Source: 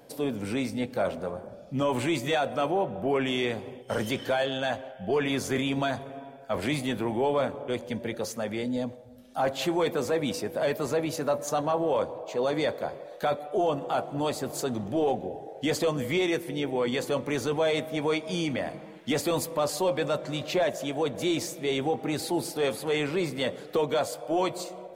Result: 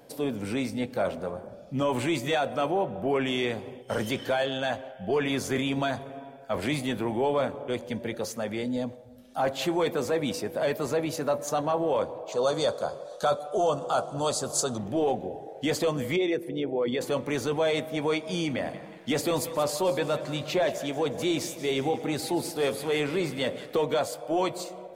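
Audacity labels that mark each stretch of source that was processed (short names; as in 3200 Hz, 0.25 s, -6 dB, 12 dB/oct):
12.320000	14.780000	EQ curve 190 Hz 0 dB, 300 Hz -5 dB, 550 Hz +3 dB, 850 Hz 0 dB, 1300 Hz +6 dB, 2000 Hz -11 dB, 3400 Hz +3 dB, 6400 Hz +11 dB, 9400 Hz +9 dB, 15000 Hz -9 dB
16.160000	17.010000	formant sharpening exponent 1.5
18.480000	23.950000	split-band echo split 780 Hz, lows 81 ms, highs 0.179 s, level -14 dB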